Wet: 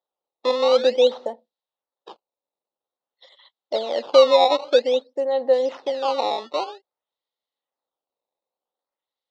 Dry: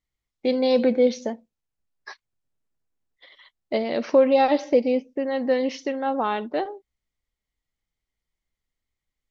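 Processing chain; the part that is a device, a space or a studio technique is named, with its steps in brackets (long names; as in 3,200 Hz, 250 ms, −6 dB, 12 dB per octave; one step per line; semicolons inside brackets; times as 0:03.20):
circuit-bent sampling toy (sample-and-hold swept by an LFO 16×, swing 160% 0.51 Hz; loudspeaker in its box 460–4,800 Hz, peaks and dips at 530 Hz +8 dB, 840 Hz +6 dB, 1,600 Hz −7 dB, 2,300 Hz −10 dB, 3,800 Hz +9 dB)
level −1 dB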